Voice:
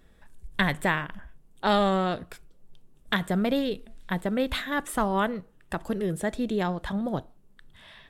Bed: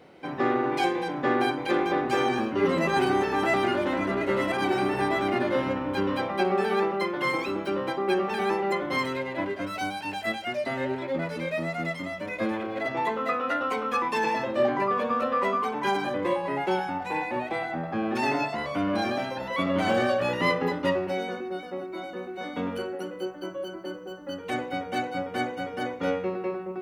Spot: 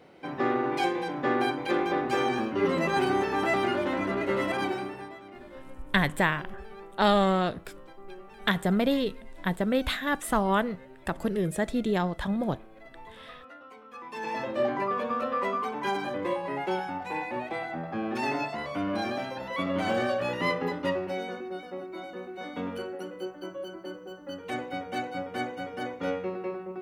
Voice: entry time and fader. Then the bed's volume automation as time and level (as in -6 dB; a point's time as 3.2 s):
5.35 s, +0.5 dB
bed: 4.6 s -2 dB
5.22 s -21 dB
13.88 s -21 dB
14.4 s -3.5 dB